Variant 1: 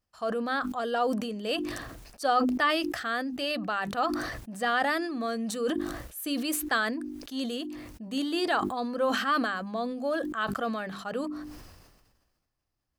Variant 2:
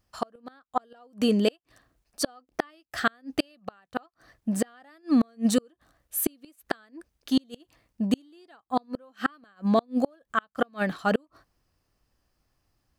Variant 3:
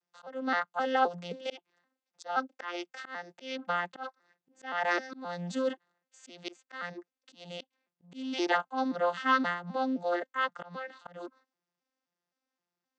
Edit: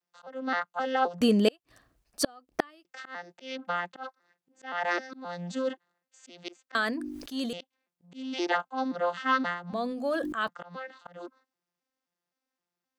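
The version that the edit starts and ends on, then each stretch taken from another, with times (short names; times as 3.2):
3
1.21–2.85 from 2
6.75–7.53 from 1
9.73–10.48 from 1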